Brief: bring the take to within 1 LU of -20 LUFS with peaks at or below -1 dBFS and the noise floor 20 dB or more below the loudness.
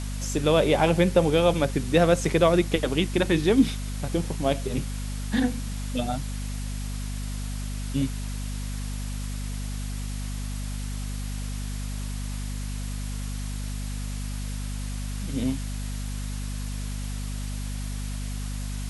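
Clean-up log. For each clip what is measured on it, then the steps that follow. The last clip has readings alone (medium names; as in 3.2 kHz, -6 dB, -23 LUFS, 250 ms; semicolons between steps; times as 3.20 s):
hum 50 Hz; highest harmonic 250 Hz; hum level -29 dBFS; noise floor -31 dBFS; noise floor target -48 dBFS; loudness -27.5 LUFS; peak level -7.0 dBFS; loudness target -20.0 LUFS
-> hum notches 50/100/150/200/250 Hz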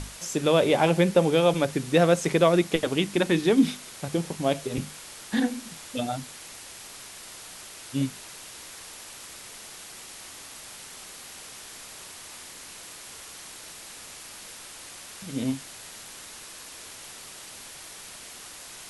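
hum not found; noise floor -44 dBFS; noise floor target -45 dBFS
-> noise print and reduce 6 dB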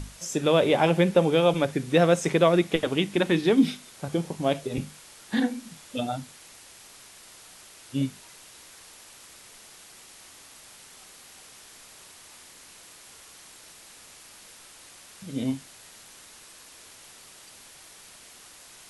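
noise floor -50 dBFS; loudness -25.0 LUFS; peak level -7.5 dBFS; loudness target -20.0 LUFS
-> trim +5 dB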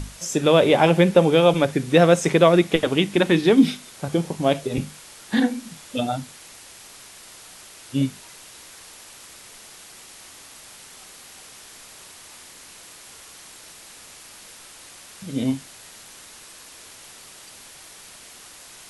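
loudness -20.0 LUFS; peak level -2.5 dBFS; noise floor -45 dBFS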